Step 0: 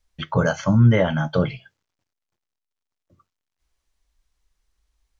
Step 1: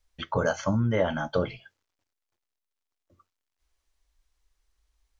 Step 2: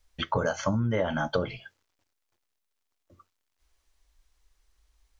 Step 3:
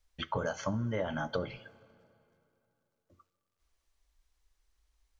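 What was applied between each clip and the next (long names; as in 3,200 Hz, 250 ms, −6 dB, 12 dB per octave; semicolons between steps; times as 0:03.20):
dynamic equaliser 2,400 Hz, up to −4 dB, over −40 dBFS, Q 0.81; downward compressor, threshold −15 dBFS, peak gain reduction 6 dB; parametric band 150 Hz −13 dB 0.66 octaves; level −1.5 dB
downward compressor 4 to 1, threshold −29 dBFS, peak gain reduction 9 dB; level +5 dB
dense smooth reverb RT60 2.9 s, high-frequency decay 0.75×, DRR 19.5 dB; level −6.5 dB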